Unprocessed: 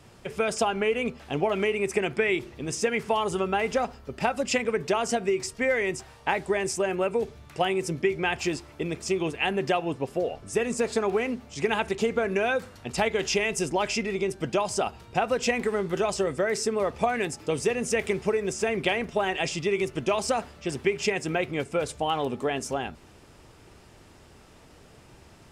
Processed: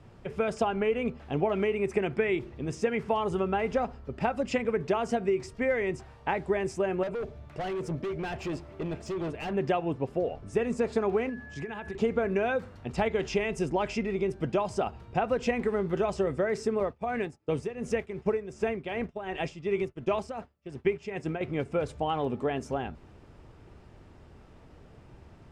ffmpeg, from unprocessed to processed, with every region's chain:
-filter_complex "[0:a]asettb=1/sr,asplit=3[s0][s1][s2];[s0]atrim=end=7.034[s3];[s1]atrim=start=7.03:end=9.53,asetpts=PTS-STARTPTS,afade=t=in:d=0.004:c=qsin,afade=t=out:st=2.496:d=0.004:c=qsin,equalizer=f=620:w=6.4:g=10.5,asoftclip=type=hard:threshold=0.0376,aecho=1:1:678:0.0944,atrim=end_sample=110250[s4];[s2]atrim=start=9.526[s5];[s3][s4]acrossfade=d=0.004:c1=hsin:c2=qsin[s6];[s6][s5]acrossfade=d=0.004:c1=qsin:c2=hsin,asettb=1/sr,asplit=3[s7][s8][s9];[s7]atrim=end=11.294[s10];[s8]atrim=start=11.29:end=11.95,asetpts=PTS-STARTPTS,afade=t=in:d=0.004:c=qsin,afade=t=out:st=0.656:d=0.004:c=qsin,equalizer=f=540:t=o:w=0.22:g=-4.5,acompressor=threshold=0.0251:ratio=5:attack=3.2:release=140:knee=1:detection=peak,aeval=exprs='val(0)+0.01*sin(2*PI*1700*n/s)':c=same[s11];[s9]atrim=start=11.946[s12];[s10][s11]acrossfade=d=0.004:c1=hsin:c2=qsin[s13];[s13][s12]acrossfade=d=0.004:c1=qsin:c2=hsin,asettb=1/sr,asplit=3[s14][s15][s16];[s14]atrim=end=16.804[s17];[s15]atrim=start=16.8:end=21.41,asetpts=PTS-STARTPTS,afade=t=in:d=0.004:c=qsin,afade=t=out:st=4.606:d=0.004:c=qsin,agate=range=0.0224:threshold=0.0224:ratio=3:release=100:detection=peak,tremolo=f=2.7:d=0.72[s18];[s16]atrim=start=21.406[s19];[s17][s18]acrossfade=d=0.004:c1=hsin:c2=qsin[s20];[s20][s19]acrossfade=d=0.004:c1=qsin:c2=hsin,lowpass=f=1600:p=1,lowshelf=f=160:g=6,volume=0.794"

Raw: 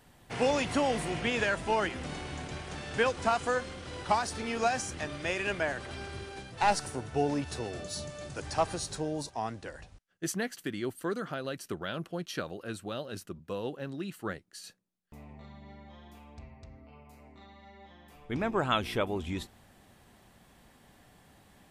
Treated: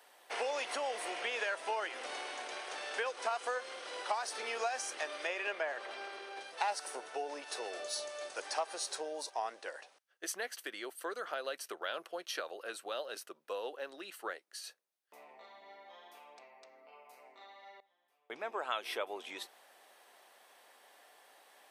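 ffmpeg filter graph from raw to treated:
-filter_complex "[0:a]asettb=1/sr,asplit=3[s0][s1][s2];[s0]atrim=end=5.274[s3];[s1]atrim=start=5.27:end=6.41,asetpts=PTS-STARTPTS,afade=t=in:d=0.004:c=qsin,afade=t=out:st=1.136:d=0.004:c=qsin,aemphasis=mode=reproduction:type=50kf,bandreject=f=1500:w=22[s4];[s2]atrim=start=6.406[s5];[s3][s4]acrossfade=d=0.004:c1=hsin:c2=qsin[s6];[s6][s5]acrossfade=d=0.004:c1=qsin:c2=hsin,asettb=1/sr,asplit=3[s7][s8][s9];[s7]atrim=end=17.804[s10];[s8]atrim=start=17.8:end=18.51,asetpts=PTS-STARTPTS,afade=t=in:d=0.004:c=qsin,afade=t=out:st=0.706:d=0.004:c=qsin,agate=range=0.0891:threshold=0.00447:ratio=16:release=100:detection=peak,equalizer=f=130:w=1.6:g=12.5[s11];[s9]atrim=start=18.506[s12];[s10][s11]acrossfade=d=0.004:c1=hsin:c2=qsin[s13];[s13][s12]acrossfade=d=0.004:c1=qsin:c2=hsin,acompressor=threshold=0.0251:ratio=6,highpass=f=470:w=0.5412,highpass=f=470:w=1.3066,bandreject=f=7200:w=9.6,volume=1.12"

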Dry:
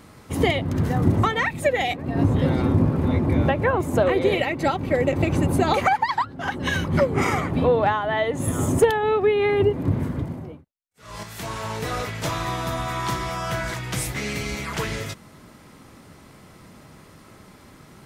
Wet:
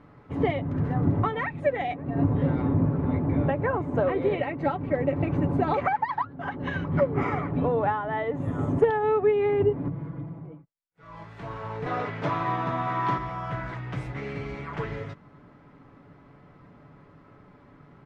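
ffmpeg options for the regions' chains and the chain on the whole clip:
-filter_complex "[0:a]asettb=1/sr,asplit=3[s0][s1][s2];[s0]atrim=end=9.884[s3];[s1]atrim=start=9.88:end=11.24,asetpts=PTS-STARTPTS,afade=t=in:d=0.004:c=qsin,afade=t=out:st=1.356:d=0.004:c=qsin,aecho=1:1:6.1:0.82,atrim=end_sample=59976,acompressor=threshold=0.00891:ratio=1.5:attack=3.2:release=140:knee=1:detection=peak[s4];[s2]atrim=start=11.236[s5];[s3][s4]acrossfade=d=0.004:c1=hsin:c2=qsin[s6];[s6][s5]acrossfade=d=0.004:c1=qsin:c2=hsin,asettb=1/sr,asplit=3[s7][s8][s9];[s7]atrim=end=11.864[s10];[s8]atrim=start=11.86:end=13.18,asetpts=PTS-STARTPTS,afade=t=in:d=0.004:c=qsin,afade=t=out:st=1.316:d=0.004:c=qsin,highpass=150,lowpass=7500,acontrast=31[s11];[s9]atrim=start=13.176[s12];[s10][s11]acrossfade=d=0.004:c1=hsin:c2=qsin[s13];[s13][s12]acrossfade=d=0.004:c1=qsin:c2=hsin,lowpass=1700,aecho=1:1:7:0.42,volume=0.562"

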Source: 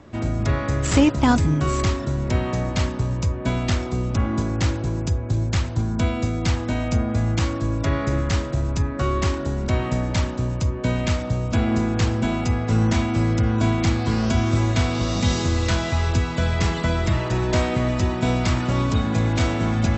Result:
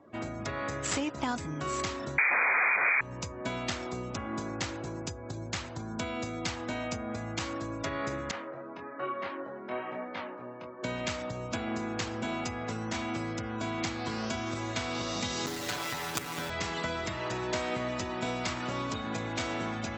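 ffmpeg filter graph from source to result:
-filter_complex "[0:a]asettb=1/sr,asplit=3[s0][s1][s2];[s0]atrim=end=2.184[s3];[s1]atrim=start=2.18:end=3.01,asetpts=PTS-STARTPTS,afade=t=in:d=0.004:c=qsin,afade=t=out:st=0.826:d=0.004:c=qsin,aeval=exprs='0.316*sin(PI/2*7.94*val(0)/0.316)':c=same,lowpass=f=2100:t=q:w=0.5098,lowpass=f=2100:t=q:w=0.6013,lowpass=f=2100:t=q:w=0.9,lowpass=f=2100:t=q:w=2.563,afreqshift=-2500[s4];[s2]atrim=start=3.006[s5];[s3][s4]acrossfade=d=0.004:c1=hsin:c2=qsin[s6];[s6][s5]acrossfade=d=0.004:c1=qsin:c2=hsin,asettb=1/sr,asplit=3[s7][s8][s9];[s7]atrim=end=8.314[s10];[s8]atrim=start=8.31:end=10.83,asetpts=PTS-STARTPTS,afade=t=in:d=0.004:c=qsin,afade=t=out:st=2.516:d=0.004:c=qsin,highpass=280,lowpass=2300,flanger=delay=20:depth=4.5:speed=1.1[s11];[s9]atrim=start=10.826[s12];[s10][s11]acrossfade=d=0.004:c1=hsin:c2=qsin[s13];[s13][s12]acrossfade=d=0.004:c1=qsin:c2=hsin,asettb=1/sr,asplit=3[s14][s15][s16];[s14]atrim=end=15.464[s17];[s15]atrim=start=15.46:end=16.5,asetpts=PTS-STARTPTS,afade=t=in:d=0.004:c=qsin,afade=t=out:st=1.036:d=0.004:c=qsin,acrusher=bits=3:dc=4:mix=0:aa=0.000001,aecho=1:1:6.9:0.87,atrim=end_sample=45864[s18];[s16]atrim=start=16.496[s19];[s17][s18]acrossfade=d=0.004:c1=hsin:c2=qsin[s20];[s20][s19]acrossfade=d=0.004:c1=qsin:c2=hsin,acompressor=threshold=0.1:ratio=6,highpass=f=520:p=1,afftdn=nr=19:nf=-51,volume=0.708"

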